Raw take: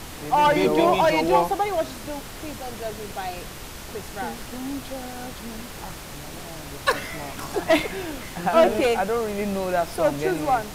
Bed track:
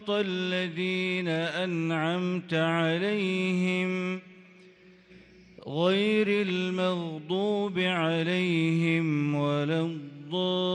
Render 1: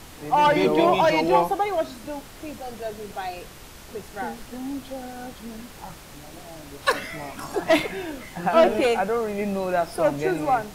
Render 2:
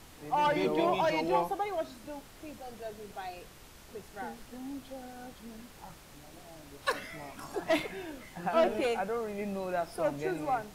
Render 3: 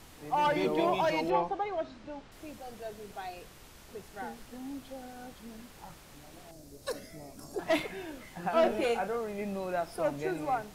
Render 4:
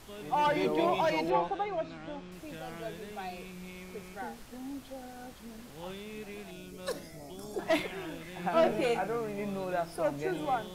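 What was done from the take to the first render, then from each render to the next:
noise reduction from a noise print 6 dB
level −9.5 dB
0:01.30–0:02.32: Gaussian smoothing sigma 1.6 samples; 0:06.51–0:07.59: flat-topped bell 1,700 Hz −12.5 dB 2.4 octaves; 0:08.60–0:09.16: double-tracking delay 34 ms −9 dB
mix in bed track −19 dB

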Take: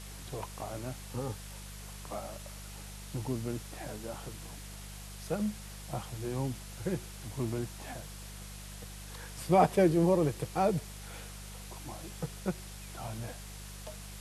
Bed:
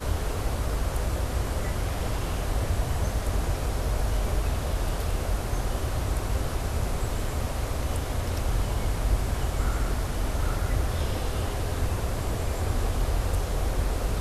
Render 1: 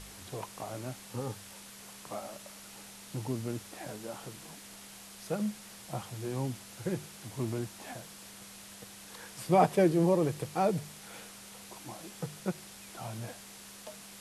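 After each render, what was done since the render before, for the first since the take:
hum removal 50 Hz, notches 3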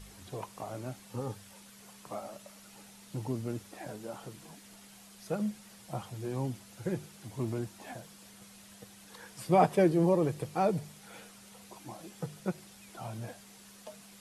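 broadband denoise 7 dB, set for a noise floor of −50 dBFS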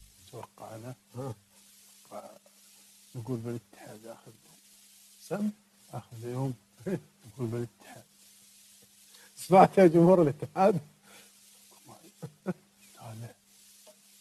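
transient designer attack −3 dB, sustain −8 dB
multiband upward and downward expander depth 70%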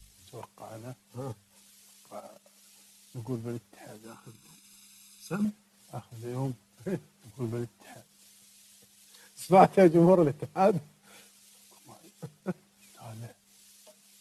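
0:04.05–0:05.45: comb filter 0.8 ms, depth 80%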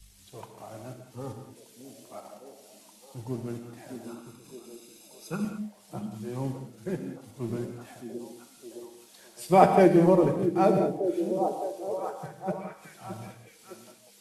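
on a send: echo through a band-pass that steps 614 ms, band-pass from 260 Hz, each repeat 0.7 octaves, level −5 dB
on the sum: reverb whose tail is shaped and stops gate 230 ms flat, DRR 5 dB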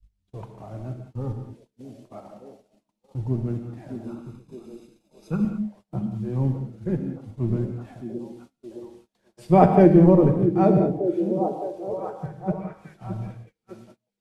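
noise gate −50 dBFS, range −28 dB
RIAA equalisation playback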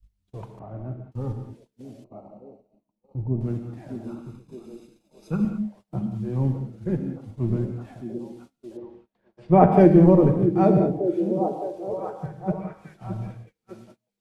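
0:00.59–0:01.12: low-pass filter 1,600 Hz
0:02.04–0:03.41: moving average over 26 samples
0:08.77–0:09.72: low-pass filter 2,200 Hz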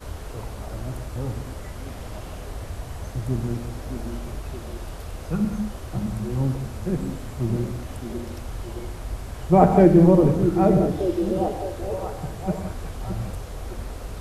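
mix in bed −7 dB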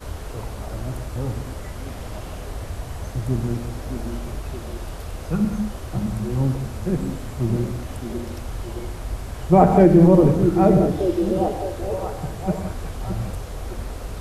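level +2.5 dB
brickwall limiter −3 dBFS, peak gain reduction 2.5 dB

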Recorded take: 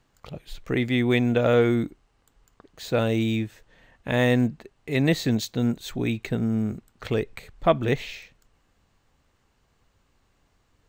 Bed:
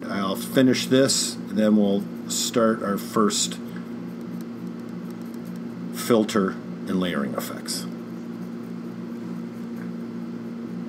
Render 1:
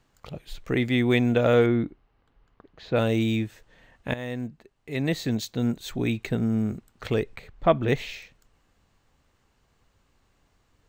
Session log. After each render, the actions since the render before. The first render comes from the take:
0:01.66–0:02.96: high-frequency loss of the air 250 metres
0:04.14–0:06.03: fade in, from −15.5 dB
0:07.36–0:07.89: parametric band 11,000 Hz −12 dB 1.7 octaves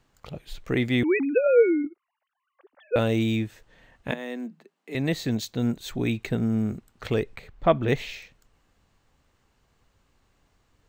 0:01.03–0:02.96: three sine waves on the formant tracks
0:04.11–0:04.95: Chebyshev high-pass filter 160 Hz, order 10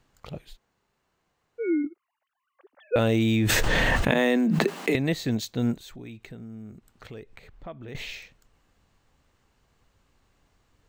0:00.50–0:01.66: fill with room tone, crossfade 0.16 s
0:02.98–0:04.96: envelope flattener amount 100%
0:05.80–0:07.95: downward compressor 2.5 to 1, threshold −46 dBFS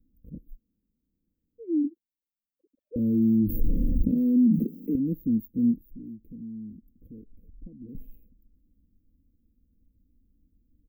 inverse Chebyshev band-stop filter 770–9,000 Hz, stop band 50 dB
comb filter 3.9 ms, depth 74%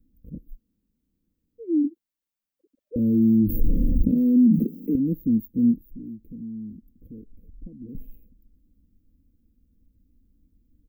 level +3.5 dB

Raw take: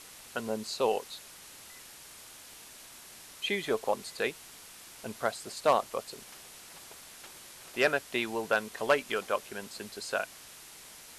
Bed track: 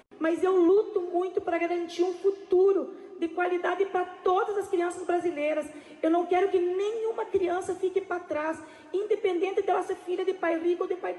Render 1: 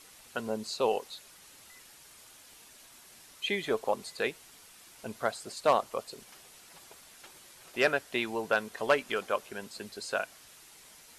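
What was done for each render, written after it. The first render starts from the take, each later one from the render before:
broadband denoise 6 dB, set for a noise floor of −51 dBFS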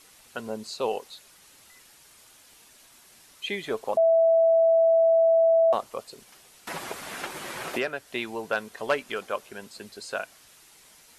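0:03.97–0:05.73: beep over 658 Hz −16 dBFS
0:06.67–0:08.12: multiband upward and downward compressor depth 100%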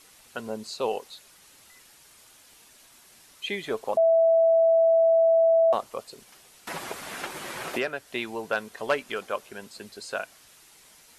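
no processing that can be heard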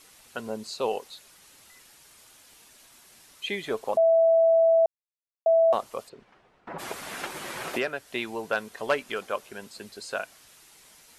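0:04.86–0:05.46: silence
0:06.08–0:06.78: low-pass filter 2,200 Hz → 1,100 Hz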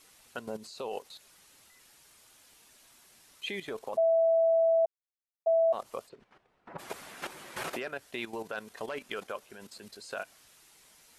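brickwall limiter −19.5 dBFS, peak gain reduction 5.5 dB
output level in coarse steps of 12 dB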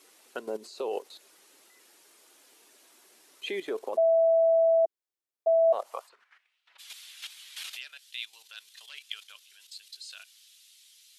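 high-pass filter sweep 350 Hz → 3,400 Hz, 0:05.60–0:06.63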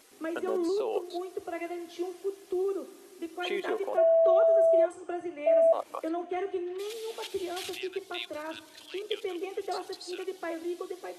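mix in bed track −8.5 dB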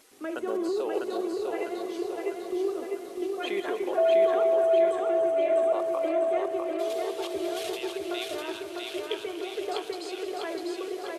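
feedback delay that plays each chunk backwards 147 ms, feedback 72%, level −12 dB
repeating echo 650 ms, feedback 55%, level −3 dB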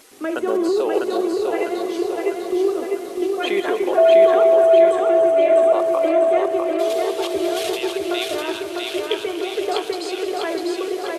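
level +9.5 dB

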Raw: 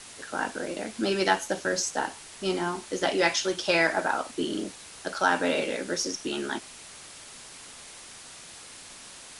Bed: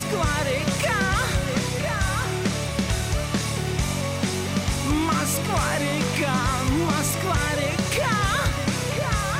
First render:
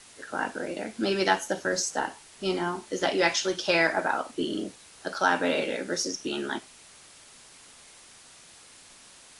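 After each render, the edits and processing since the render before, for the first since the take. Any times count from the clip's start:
noise reduction from a noise print 6 dB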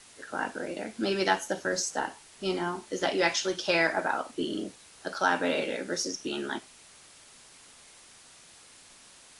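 level −2 dB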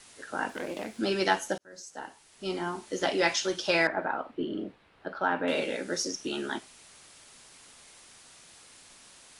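0:00.49–0:00.99: phase distortion by the signal itself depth 0.19 ms
0:01.58–0:02.89: fade in
0:03.87–0:05.48: high-frequency loss of the air 460 metres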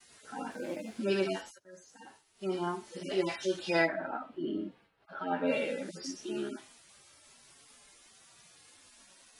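harmonic-percussive split with one part muted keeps harmonic
downward expander −56 dBFS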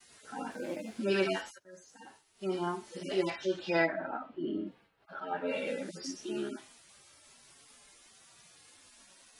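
0:01.14–0:01.63: parametric band 1,700 Hz +6 dB 2 octaves
0:03.30–0:04.67: high-frequency loss of the air 110 metres
0:05.20–0:05.67: string-ensemble chorus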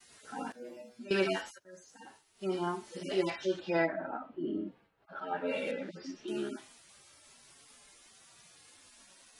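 0:00.52–0:01.11: stiff-string resonator 120 Hz, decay 0.33 s, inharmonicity 0.002
0:03.60–0:05.16: high-shelf EQ 2,100 Hz −8 dB
0:05.71–0:06.28: Chebyshev low-pass filter 2,900 Hz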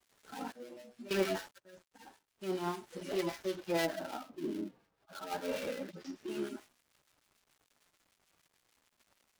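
gap after every zero crossing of 0.16 ms
two-band tremolo in antiphase 6.7 Hz, depth 50%, crossover 1,300 Hz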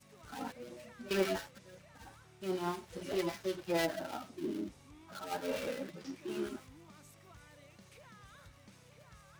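mix in bed −34.5 dB

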